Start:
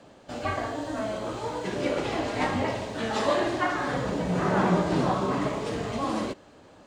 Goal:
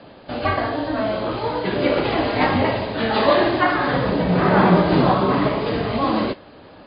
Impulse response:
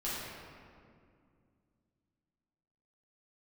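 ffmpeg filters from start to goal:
-af "volume=2.82" -ar 11025 -c:a libmp3lame -b:a 24k

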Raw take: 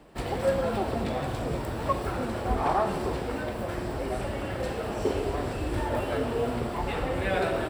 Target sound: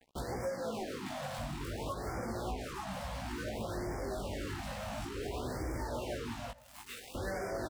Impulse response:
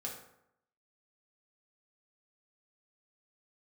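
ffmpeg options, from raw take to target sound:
-filter_complex "[0:a]asettb=1/sr,asplit=3[s0][s1][s2];[s0]atrim=end=0.494[s3];[s1]atrim=start=0.49:end=1.39,asetpts=PTS-STARTPTS,afade=t=in:d=0.004:c=qsin,afade=t=out:st=0.896:d=0.004:c=qsin,highpass=180[s4];[s2]atrim=start=1.386[s5];[s3][s4]acrossfade=d=0.004:c1=hsin:c2=qsin[s6];[s6][s5]acrossfade=d=0.004:c1=qsin:c2=hsin,asettb=1/sr,asplit=3[s7][s8][s9];[s7]atrim=end=6.514[s10];[s8]atrim=start=6.51:end=7.15,asetpts=PTS-STARTPTS,afade=t=in:d=0.004:c=qsin,afade=t=out:st=0.636:d=0.004:c=qsin,aderivative[s11];[s9]atrim=start=7.146[s12];[s10][s11]acrossfade=d=0.004:c1=hsin:c2=qsin[s13];[s13][s12]acrossfade=d=0.004:c1=qsin:c2=hsin,acompressor=threshold=0.0178:ratio=6,acrusher=bits=6:mix=0:aa=0.5,asoftclip=type=tanh:threshold=0.02,asettb=1/sr,asplit=3[s14][s15][s16];[s14]atrim=end=5.214[s17];[s15]atrim=start=5.21:end=5.86,asetpts=PTS-STARTPTS,afade=t=in:d=0.004:c=qsin,afade=t=out:st=0.646:d=0.004:c=qsin,acrusher=bits=4:mode=log:mix=0:aa=0.000001[s18];[s16]atrim=start=5.856[s19];[s17][s18]acrossfade=d=0.004:c1=hsin:c2=qsin[s20];[s20][s19]acrossfade=d=0.004:c1=qsin:c2=hsin,flanger=delay=15.5:depth=5.3:speed=0.35,aecho=1:1:635:0.0891,afftfilt=real='re*(1-between(b*sr/1024,340*pow(3400/340,0.5+0.5*sin(2*PI*0.57*pts/sr))/1.41,340*pow(3400/340,0.5+0.5*sin(2*PI*0.57*pts/sr))*1.41))':imag='im*(1-between(b*sr/1024,340*pow(3400/340,0.5+0.5*sin(2*PI*0.57*pts/sr))/1.41,340*pow(3400/340,0.5+0.5*sin(2*PI*0.57*pts/sr))*1.41))':win_size=1024:overlap=0.75,volume=1.78"

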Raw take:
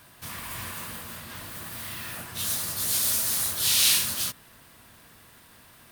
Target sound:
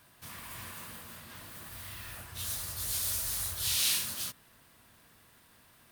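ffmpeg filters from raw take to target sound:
-filter_complex "[0:a]asplit=3[s0][s1][s2];[s0]afade=t=out:st=1.67:d=0.02[s3];[s1]asubboost=boost=11:cutoff=69,afade=t=in:st=1.67:d=0.02,afade=t=out:st=3.77:d=0.02[s4];[s2]afade=t=in:st=3.77:d=0.02[s5];[s3][s4][s5]amix=inputs=3:normalize=0,volume=0.398"

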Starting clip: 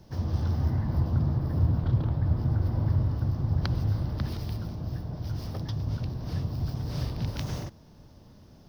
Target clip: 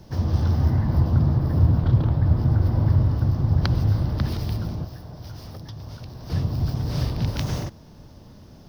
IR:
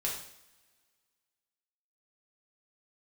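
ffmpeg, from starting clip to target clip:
-filter_complex "[0:a]asettb=1/sr,asplit=3[s0][s1][s2];[s0]atrim=end=4.844[s3];[s1]atrim=start=4.84:end=6.3,asetpts=PTS-STARTPTS,afade=t=in:d=0.004:c=qsin,afade=t=out:st=1.456:d=0.004:c=qsin,acrossover=split=440|4700[s4][s5][s6];[s4]acompressor=threshold=0.00631:ratio=4[s7];[s5]acompressor=threshold=0.002:ratio=4[s8];[s6]acompressor=threshold=0.00126:ratio=4[s9];[s7][s8][s9]amix=inputs=3:normalize=0[s10];[s2]atrim=start=6.296[s11];[s3][s10]acrossfade=d=0.004:c1=hsin:c2=qsin[s12];[s12][s11]acrossfade=d=0.004:c1=qsin:c2=hsin,volume=2.11"

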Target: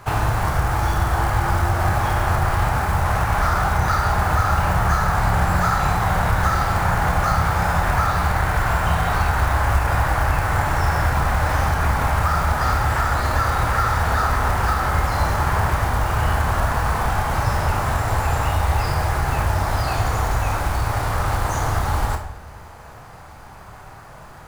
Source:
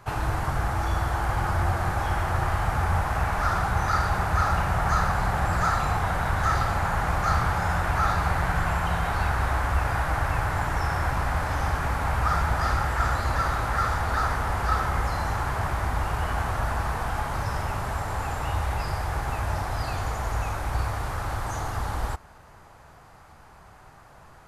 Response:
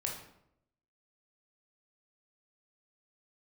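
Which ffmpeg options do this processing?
-filter_complex "[0:a]acompressor=threshold=0.0562:ratio=4,acrusher=bits=5:mode=log:mix=0:aa=0.000001,asplit=2[s0][s1];[1:a]atrim=start_sample=2205,adelay=29[s2];[s1][s2]afir=irnorm=-1:irlink=0,volume=0.531[s3];[s0][s3]amix=inputs=2:normalize=0,volume=2.37"

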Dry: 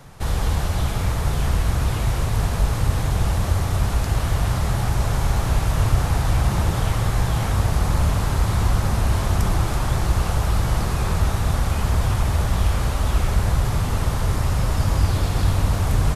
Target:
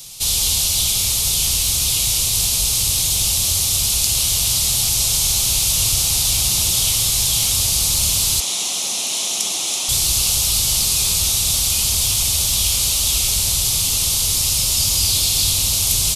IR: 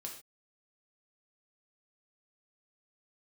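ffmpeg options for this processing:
-filter_complex "[0:a]aexciter=amount=13.9:drive=8.6:freq=2700,asettb=1/sr,asplit=3[s0][s1][s2];[s0]atrim=end=8.404[s3];[s1]atrim=start=8.4:end=9.89,asetpts=PTS-STARTPTS,afade=t=in:d=0.004:c=qsin,afade=t=out:st=1.486:d=0.004:c=qsin,highpass=f=230:w=0.5412,highpass=f=230:w=1.3066,equalizer=f=710:t=q:w=4:g=4,equalizer=f=1500:t=q:w=4:g=-4,equalizer=f=4700:t=q:w=4:g=-7,equalizer=f=8300:t=q:w=4:g=-7,lowpass=f=9700:w=0.5412,lowpass=f=9700:w=1.3066[s4];[s2]atrim=start=9.886[s5];[s3][s4]acrossfade=d=0.004:c1=hsin:c2=qsin[s6];[s6][s5]acrossfade=d=0.004:c1=qsin:c2=hsin,volume=0.376"

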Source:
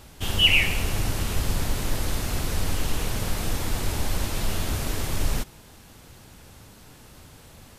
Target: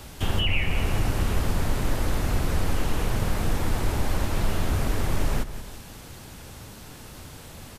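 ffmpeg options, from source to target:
-filter_complex "[0:a]aecho=1:1:179|358|537|716:0.141|0.0593|0.0249|0.0105,acrossover=split=160|2200[s0][s1][s2];[s0]acompressor=threshold=0.0562:ratio=4[s3];[s1]acompressor=threshold=0.0178:ratio=4[s4];[s2]acompressor=threshold=0.00447:ratio=4[s5];[s3][s4][s5]amix=inputs=3:normalize=0,volume=1.88"

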